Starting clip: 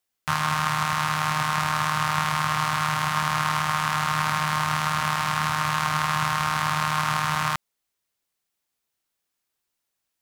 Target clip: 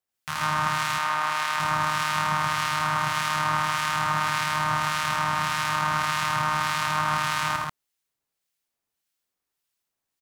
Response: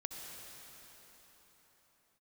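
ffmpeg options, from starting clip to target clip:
-filter_complex "[0:a]aecho=1:1:81.63|137:0.794|0.891,acrossover=split=1600[a][b];[a]aeval=exprs='val(0)*(1-0.5/2+0.5/2*cos(2*PI*1.7*n/s))':c=same[c];[b]aeval=exprs='val(0)*(1-0.5/2-0.5/2*cos(2*PI*1.7*n/s))':c=same[d];[c][d]amix=inputs=2:normalize=0,asettb=1/sr,asplit=3[e][f][g];[e]atrim=end=0.984[h];[f]atrim=start=0.98:end=1.6,asetpts=PTS-STARTPTS,afade=t=in:d=0.004:c=qsin,afade=t=out:st=0.616:d=0.004:c=qsin,bass=f=250:g=-15,treble=f=4k:g=-3[i];[g]atrim=start=1.596[j];[h][i]acrossfade=d=0.004:c1=hsin:c2=qsin[k];[k][j]acrossfade=d=0.004:c1=qsin:c2=hsin,volume=-3.5dB"

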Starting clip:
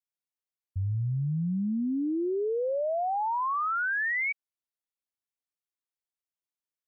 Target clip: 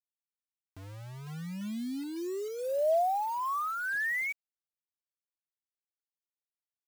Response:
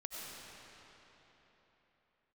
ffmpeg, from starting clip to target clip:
-af "highpass=300,equalizer=f=310:t=q:w=4:g=-6,equalizer=f=460:t=q:w=4:g=-9,equalizer=f=650:t=q:w=4:g=6,equalizer=f=930:t=q:w=4:g=-5,equalizer=f=1.4k:t=q:w=4:g=-6,lowpass=f=2.1k:w=0.5412,lowpass=f=2.1k:w=1.3066,acrusher=bits=7:mix=0:aa=0.000001"

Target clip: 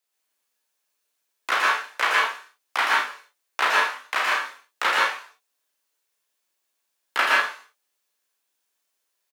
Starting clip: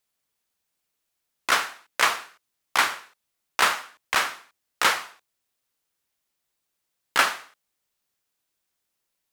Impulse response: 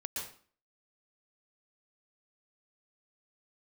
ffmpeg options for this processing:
-filter_complex "[0:a]highpass=330,acrossover=split=670|3800[a][b][c];[c]acompressor=threshold=-41dB:ratio=6[d];[a][b][d]amix=inputs=3:normalize=0,aecho=1:1:35|51:0.562|0.376[e];[1:a]atrim=start_sample=2205,afade=t=out:st=0.21:d=0.01,atrim=end_sample=9702[f];[e][f]afir=irnorm=-1:irlink=0,volume=1dB"

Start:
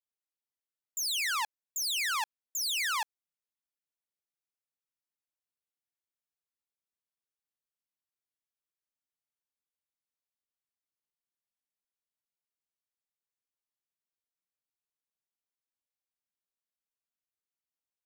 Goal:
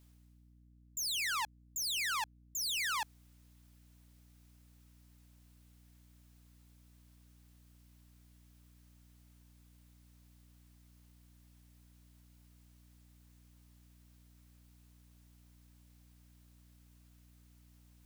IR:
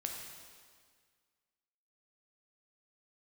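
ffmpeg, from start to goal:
-af "areverse,acompressor=mode=upward:threshold=-47dB:ratio=2.5,areverse,aeval=exprs='val(0)+0.00141*(sin(2*PI*60*n/s)+sin(2*PI*2*60*n/s)/2+sin(2*PI*3*60*n/s)/3+sin(2*PI*4*60*n/s)/4+sin(2*PI*5*60*n/s)/5)':c=same,volume=-4dB"

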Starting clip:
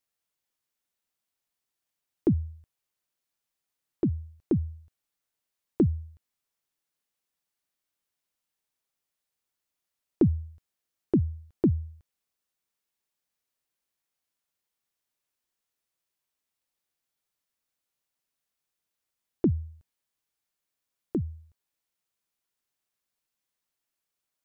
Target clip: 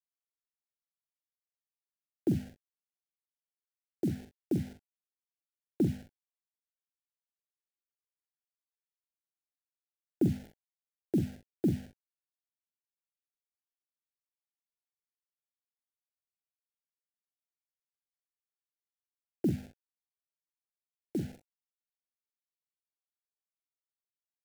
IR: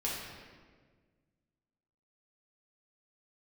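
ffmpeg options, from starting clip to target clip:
-filter_complex "[0:a]highpass=130,equalizer=f=210:w=0.32:g=5.5,bandreject=f=50:t=h:w=6,bandreject=f=100:t=h:w=6,bandreject=f=150:t=h:w=6,bandreject=f=200:t=h:w=6,bandreject=f=250:t=h:w=6,acrossover=split=350|3000[a][b][c];[b]acompressor=threshold=-34dB:ratio=6[d];[a][d][c]amix=inputs=3:normalize=0,acrusher=bits=6:mix=0:aa=0.000001,asuperstop=centerf=1100:order=8:qfactor=1.9,aecho=1:1:44|64:0.447|0.15,volume=-7.5dB"

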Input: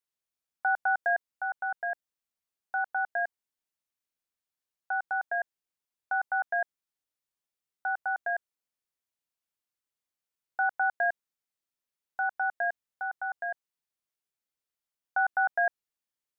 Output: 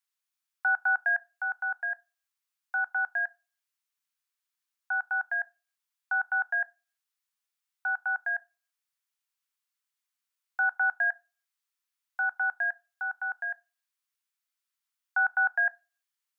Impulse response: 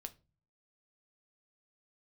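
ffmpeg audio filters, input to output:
-filter_complex "[0:a]highpass=f=1k:w=0.5412,highpass=f=1k:w=1.3066,asplit=2[a][b];[1:a]atrim=start_sample=2205,afade=t=out:st=0.4:d=0.01,atrim=end_sample=18081[c];[b][c]afir=irnorm=-1:irlink=0,volume=-1dB[d];[a][d]amix=inputs=2:normalize=0"

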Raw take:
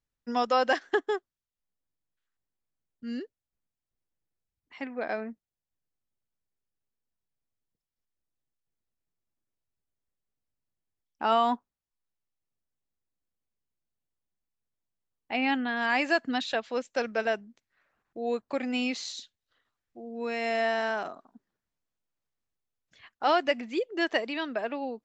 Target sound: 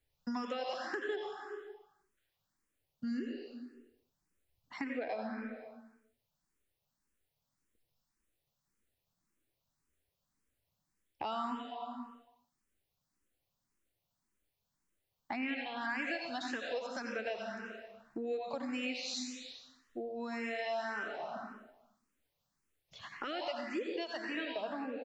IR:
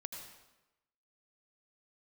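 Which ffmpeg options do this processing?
-filter_complex "[0:a]acrossover=split=370|1300[a][b][c];[b]alimiter=level_in=2dB:limit=-24dB:level=0:latency=1,volume=-2dB[d];[c]asplit=4[e][f][g][h];[f]adelay=89,afreqshift=-130,volume=-12dB[i];[g]adelay=178,afreqshift=-260,volume=-21.6dB[j];[h]adelay=267,afreqshift=-390,volume=-31.3dB[k];[e][i][j][k]amix=inputs=4:normalize=0[l];[a][d][l]amix=inputs=3:normalize=0[m];[1:a]atrim=start_sample=2205[n];[m][n]afir=irnorm=-1:irlink=0,acompressor=threshold=-48dB:ratio=5,asplit=2[o][p];[p]afreqshift=1.8[q];[o][q]amix=inputs=2:normalize=1,volume=13dB"

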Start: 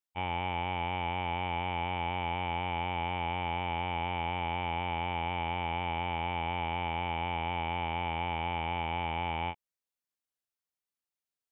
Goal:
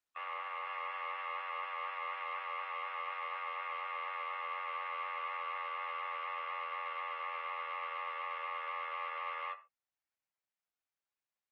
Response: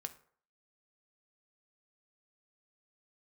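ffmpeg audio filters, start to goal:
-filter_complex "[0:a]aeval=exprs='0.0158*(abs(mod(val(0)/0.0158+3,4)-2)-1)':c=same[a];[1:a]atrim=start_sample=2205,atrim=end_sample=6174[b];[a][b]afir=irnorm=-1:irlink=0,highpass=f=220:t=q:w=0.5412,highpass=f=220:t=q:w=1.307,lowpass=f=2.5k:t=q:w=0.5176,lowpass=f=2.5k:t=q:w=0.7071,lowpass=f=2.5k:t=q:w=1.932,afreqshift=320,volume=5dB" -ar 48000 -c:a libopus -b:a 20k

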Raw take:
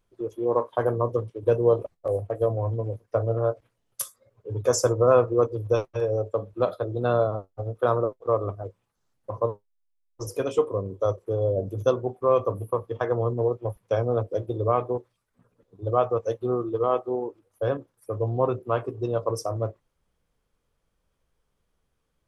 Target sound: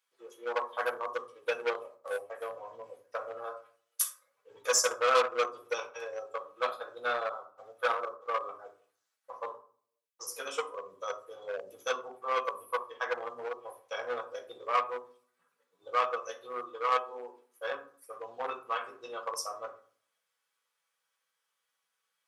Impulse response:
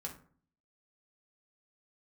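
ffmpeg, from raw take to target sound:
-filter_complex "[1:a]atrim=start_sample=2205[a];[0:a][a]afir=irnorm=-1:irlink=0,asplit=2[b][c];[c]acrusher=bits=2:mix=0:aa=0.5,volume=-12dB[d];[b][d]amix=inputs=2:normalize=0,highpass=1.5k,volume=5dB"

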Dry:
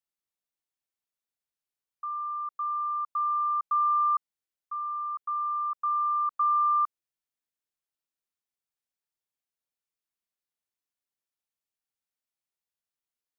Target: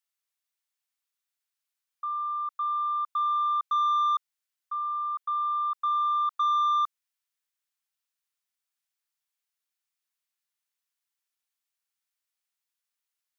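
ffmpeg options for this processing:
-filter_complex "[0:a]highpass=1.1k,asplit=2[a][b];[b]aeval=exprs='0.075*sin(PI/2*1.78*val(0)/0.075)':c=same,volume=-11dB[c];[a][c]amix=inputs=2:normalize=0"

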